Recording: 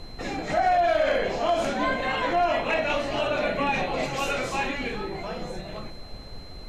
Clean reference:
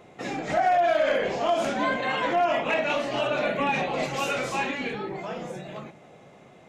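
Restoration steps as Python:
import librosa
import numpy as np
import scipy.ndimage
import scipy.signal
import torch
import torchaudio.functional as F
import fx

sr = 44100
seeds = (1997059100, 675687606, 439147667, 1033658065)

y = fx.notch(x, sr, hz=4100.0, q=30.0)
y = fx.noise_reduce(y, sr, print_start_s=6.17, print_end_s=6.67, reduce_db=12.0)
y = fx.fix_echo_inverse(y, sr, delay_ms=401, level_db=-19.5)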